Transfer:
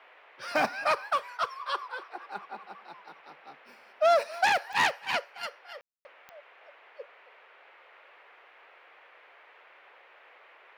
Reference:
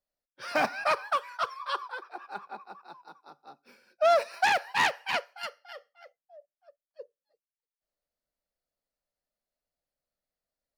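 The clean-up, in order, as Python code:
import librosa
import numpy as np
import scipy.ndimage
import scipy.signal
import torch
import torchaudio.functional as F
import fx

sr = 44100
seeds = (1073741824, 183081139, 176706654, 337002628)

y = fx.fix_declick_ar(x, sr, threshold=10.0)
y = fx.fix_ambience(y, sr, seeds[0], print_start_s=7.39, print_end_s=7.89, start_s=5.81, end_s=6.05)
y = fx.noise_reduce(y, sr, print_start_s=7.39, print_end_s=7.89, reduce_db=30.0)
y = fx.fix_echo_inverse(y, sr, delay_ms=270, level_db=-20.0)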